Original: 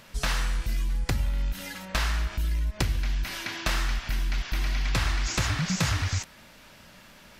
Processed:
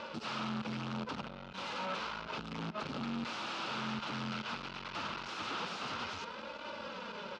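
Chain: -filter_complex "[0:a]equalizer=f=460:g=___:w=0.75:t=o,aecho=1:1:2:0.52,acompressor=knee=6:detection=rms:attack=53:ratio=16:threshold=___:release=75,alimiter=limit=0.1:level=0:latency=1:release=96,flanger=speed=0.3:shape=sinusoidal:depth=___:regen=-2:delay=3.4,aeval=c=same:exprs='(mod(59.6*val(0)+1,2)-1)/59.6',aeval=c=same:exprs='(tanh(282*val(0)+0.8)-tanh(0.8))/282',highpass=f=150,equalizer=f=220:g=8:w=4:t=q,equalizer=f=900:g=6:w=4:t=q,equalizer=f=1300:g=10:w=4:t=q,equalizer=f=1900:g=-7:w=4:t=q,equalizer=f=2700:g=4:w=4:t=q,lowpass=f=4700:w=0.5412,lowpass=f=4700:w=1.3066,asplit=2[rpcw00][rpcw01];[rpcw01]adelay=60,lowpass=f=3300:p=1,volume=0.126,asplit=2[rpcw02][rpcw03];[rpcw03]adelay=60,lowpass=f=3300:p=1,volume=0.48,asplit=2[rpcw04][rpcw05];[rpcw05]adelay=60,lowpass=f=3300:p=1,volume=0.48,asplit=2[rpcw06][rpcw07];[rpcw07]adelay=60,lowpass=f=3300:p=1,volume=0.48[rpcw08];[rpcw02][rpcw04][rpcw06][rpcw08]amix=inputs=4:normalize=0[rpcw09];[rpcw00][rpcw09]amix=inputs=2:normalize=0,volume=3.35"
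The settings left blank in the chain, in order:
9.5, 0.0224, 6.2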